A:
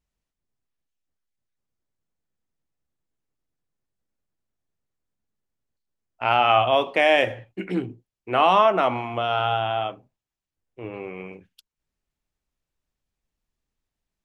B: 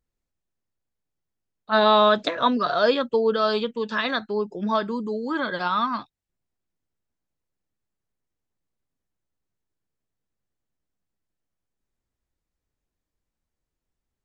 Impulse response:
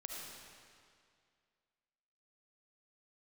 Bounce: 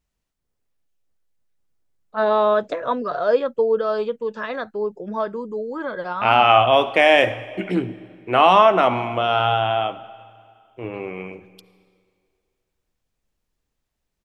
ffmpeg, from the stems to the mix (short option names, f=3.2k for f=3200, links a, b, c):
-filter_complex "[0:a]volume=3dB,asplit=2[a][b];[b]volume=-11.5dB[c];[1:a]equalizer=f=125:t=o:w=1:g=3,equalizer=f=250:t=o:w=1:g=-4,equalizer=f=500:t=o:w=1:g=8,equalizer=f=4k:t=o:w=1:g=-11,adelay=450,volume=-3.5dB[d];[2:a]atrim=start_sample=2205[e];[c][e]afir=irnorm=-1:irlink=0[f];[a][d][f]amix=inputs=3:normalize=0"